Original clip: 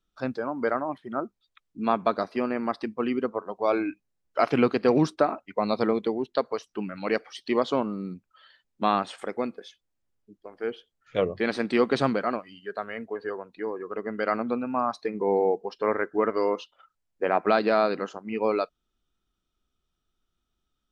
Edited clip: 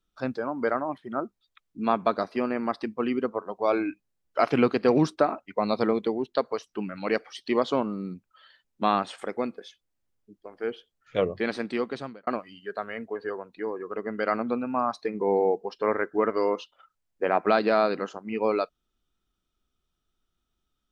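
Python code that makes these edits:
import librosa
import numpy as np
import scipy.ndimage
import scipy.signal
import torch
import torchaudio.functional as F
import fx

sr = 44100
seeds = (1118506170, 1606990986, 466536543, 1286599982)

y = fx.edit(x, sr, fx.fade_out_span(start_s=11.28, length_s=0.99), tone=tone)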